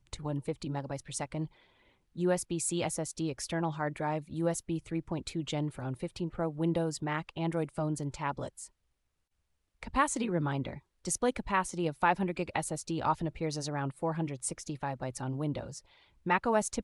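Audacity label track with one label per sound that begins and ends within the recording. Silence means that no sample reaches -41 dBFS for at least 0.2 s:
2.160000	8.660000	sound
9.830000	10.780000	sound
11.050000	15.790000	sound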